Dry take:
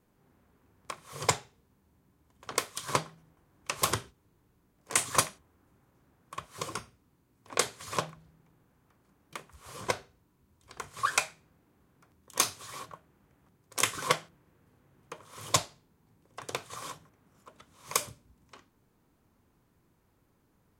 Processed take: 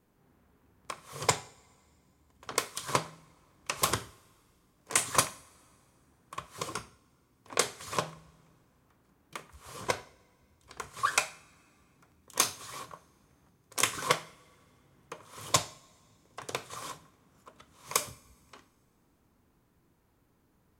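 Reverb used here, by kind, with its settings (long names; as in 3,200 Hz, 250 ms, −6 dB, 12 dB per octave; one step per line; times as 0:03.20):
coupled-rooms reverb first 0.54 s, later 2.4 s, from −18 dB, DRR 14.5 dB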